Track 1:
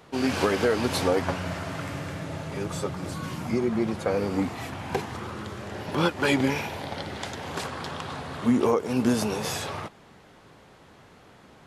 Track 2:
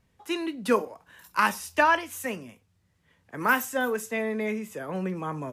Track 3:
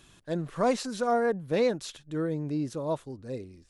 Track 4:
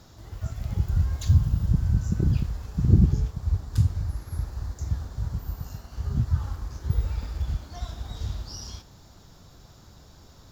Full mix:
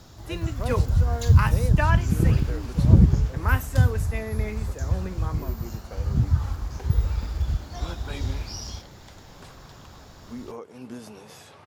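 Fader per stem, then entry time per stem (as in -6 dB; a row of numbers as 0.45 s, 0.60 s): -16.0 dB, -5.0 dB, -9.0 dB, +3.0 dB; 1.85 s, 0.00 s, 0.00 s, 0.00 s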